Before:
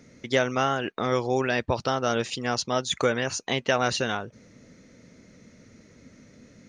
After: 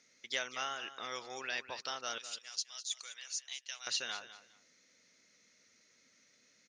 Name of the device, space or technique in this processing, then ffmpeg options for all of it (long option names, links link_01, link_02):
piezo pickup straight into a mixer: -filter_complex "[0:a]asettb=1/sr,asplit=3[link_01][link_02][link_03];[link_01]atrim=end=2.184[link_04];[link_02]atrim=start=2.18:end=3.87,asetpts=PTS-STARTPTS,afade=type=in:duration=0.004:curve=qsin,afade=type=out:start_time=1.686:duration=0.004:curve=qsin,aderivative[link_05];[link_03]atrim=start=3.866[link_06];[link_04][link_05]acrossfade=duration=0.004:curve1=hsin:curve2=qsin[link_07];[link_07][link_06]acrossfade=duration=0.004:curve1=qsin:curve2=hsin,lowpass=5200,aderivative,aecho=1:1:204|408:0.211|0.0444,volume=1.5dB"